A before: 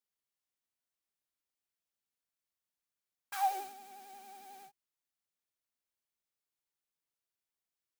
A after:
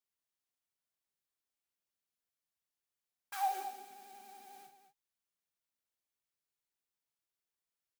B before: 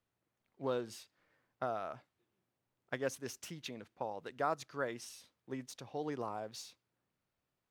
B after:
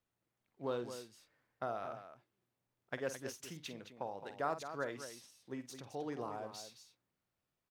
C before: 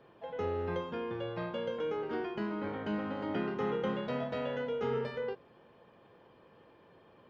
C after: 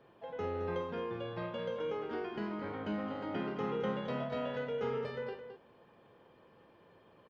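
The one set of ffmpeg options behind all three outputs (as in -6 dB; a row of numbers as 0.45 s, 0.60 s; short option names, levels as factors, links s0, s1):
-af "aecho=1:1:49.56|215.7:0.282|0.316,volume=0.75"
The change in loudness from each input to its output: -2.5 LU, -2.0 LU, -2.0 LU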